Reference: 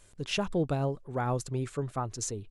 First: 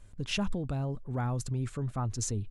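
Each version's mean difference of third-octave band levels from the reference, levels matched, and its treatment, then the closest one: 3.0 dB: resonant low shelf 270 Hz +9 dB, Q 1.5; peak limiter -20.5 dBFS, peak gain reduction 8.5 dB; peaking EQ 160 Hz -9 dB 0.63 oct; tape noise reduction on one side only decoder only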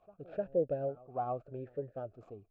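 9.5 dB: median filter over 15 samples; tilt EQ -4.5 dB/octave; on a send: reverse echo 304 ms -21 dB; on the sum: talking filter a-e 0.84 Hz; trim +1.5 dB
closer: first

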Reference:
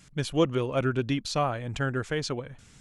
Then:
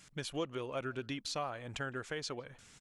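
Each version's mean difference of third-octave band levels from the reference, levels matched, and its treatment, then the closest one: 4.0 dB: bass shelf 290 Hz -10.5 dB; compression 2:1, threshold -39 dBFS, peak gain reduction 10 dB; speakerphone echo 160 ms, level -26 dB; trim -1.5 dB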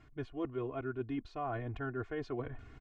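6.5 dB: low-pass 1.6 kHz 12 dB/octave; comb 2.8 ms, depth 91%; reverse; compression 6:1, threshold -37 dBFS, peak gain reduction 19.5 dB; reverse; trim +1 dB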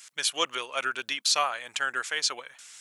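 11.5 dB: high-pass 1.2 kHz 12 dB/octave; treble shelf 4.3 kHz +8 dB; random flutter of the level, depth 50%; trim +8 dB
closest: first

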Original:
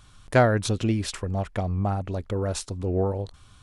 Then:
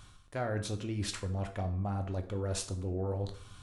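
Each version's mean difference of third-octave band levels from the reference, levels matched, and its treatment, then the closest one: 4.5 dB: reverse; compression 6:1, threshold -34 dBFS, peak gain reduction 19 dB; reverse; plate-style reverb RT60 0.52 s, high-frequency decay 0.8×, DRR 5.5 dB; endings held to a fixed fall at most 290 dB/s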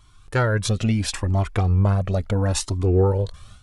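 2.5 dB: dynamic bell 610 Hz, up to -4 dB, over -32 dBFS, Q 1.5; level rider gain up to 10 dB; Shepard-style flanger rising 0.74 Hz; trim +1.5 dB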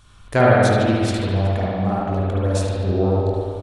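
7.5 dB: doubling 21 ms -13 dB; feedback delay 73 ms, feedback 45%, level -12 dB; spring tank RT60 2.1 s, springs 48/53 ms, chirp 30 ms, DRR -5.5 dB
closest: second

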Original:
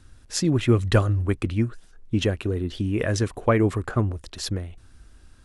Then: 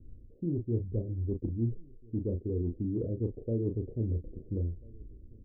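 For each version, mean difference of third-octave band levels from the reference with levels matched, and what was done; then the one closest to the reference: 10.5 dB: steep low-pass 500 Hz 48 dB/octave; reverse; compression 6:1, threshold -30 dBFS, peak gain reduction 16 dB; reverse; doubling 35 ms -6 dB; echo from a far wall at 230 m, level -26 dB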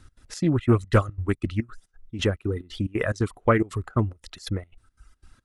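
5.0 dB: trance gate "x.xx.xx.xx.x" 178 bpm -12 dB; small resonant body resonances 1.3/2 kHz, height 8 dB, ringing for 30 ms; reverb removal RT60 1.1 s; loudspeaker Doppler distortion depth 0.21 ms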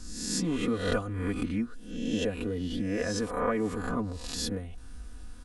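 7.5 dB: reverse spectral sustain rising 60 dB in 0.64 s; peaking EQ 2.8 kHz -3 dB 2.3 oct; comb 4.1 ms, depth 86%; compression 2:1, threshold -38 dBFS, peak gain reduction 15 dB; trim +1.5 dB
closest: second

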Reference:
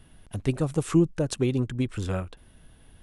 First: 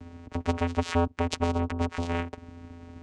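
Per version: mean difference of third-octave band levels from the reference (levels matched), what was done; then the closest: 9.5 dB: peaking EQ 3.6 kHz -9.5 dB 0.57 oct; vocoder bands 4, square 85.4 Hz; spectrum-flattening compressor 2:1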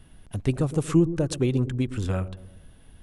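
2.0 dB: bass shelf 180 Hz +3 dB; on a send: feedback echo behind a low-pass 117 ms, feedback 44%, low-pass 610 Hz, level -12 dB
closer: second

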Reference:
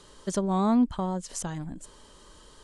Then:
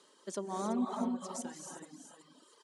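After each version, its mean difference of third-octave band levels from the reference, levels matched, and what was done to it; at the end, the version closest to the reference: 6.5 dB: high-pass 230 Hz 24 dB/octave; delay 372 ms -8 dB; gated-style reverb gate 340 ms rising, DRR 0.5 dB; reverb removal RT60 0.98 s; trim -9 dB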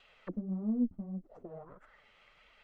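9.0 dB: comb filter that takes the minimum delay 1.5 ms; bass shelf 340 Hz -10 dB; flange 1.6 Hz, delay 2.6 ms, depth 8.7 ms, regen +17%; touch-sensitive low-pass 240–3000 Hz down, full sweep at -35.5 dBFS; trim -4.5 dB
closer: first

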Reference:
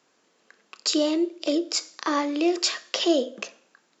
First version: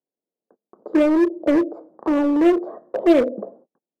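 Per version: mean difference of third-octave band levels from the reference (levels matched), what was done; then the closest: 8.5 dB: gate -53 dBFS, range -34 dB; inverse Chebyshev low-pass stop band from 2.4 kHz, stop band 60 dB; in parallel at -4.5 dB: wavefolder -28.5 dBFS; on the sum: trim +7.5 dB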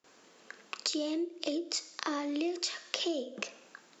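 3.5 dB: gate with hold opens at -57 dBFS; dynamic bell 1.1 kHz, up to -4 dB, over -35 dBFS, Q 0.86; compression 5:1, threshold -39 dBFS, peak gain reduction 19.5 dB; trim +6 dB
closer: second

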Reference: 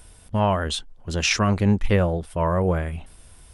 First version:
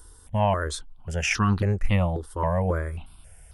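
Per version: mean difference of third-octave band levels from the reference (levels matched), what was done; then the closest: 3.0 dB: stepped phaser 3.7 Hz 650–2200 Hz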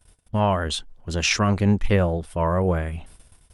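1.0 dB: gate -45 dBFS, range -23 dB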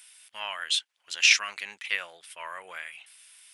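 12.0 dB: resonant high-pass 2.3 kHz, resonance Q 1.6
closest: second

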